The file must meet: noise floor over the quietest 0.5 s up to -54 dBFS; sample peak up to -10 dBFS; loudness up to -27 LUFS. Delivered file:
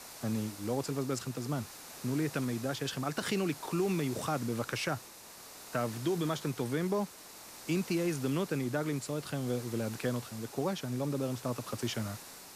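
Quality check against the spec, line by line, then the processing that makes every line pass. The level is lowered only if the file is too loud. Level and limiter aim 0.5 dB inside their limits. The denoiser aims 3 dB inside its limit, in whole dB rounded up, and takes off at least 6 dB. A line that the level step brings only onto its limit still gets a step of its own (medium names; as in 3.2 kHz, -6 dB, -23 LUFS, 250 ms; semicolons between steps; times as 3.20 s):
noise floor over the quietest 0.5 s -51 dBFS: fail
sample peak -20.0 dBFS: pass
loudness -35.0 LUFS: pass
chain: noise reduction 6 dB, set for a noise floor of -51 dBFS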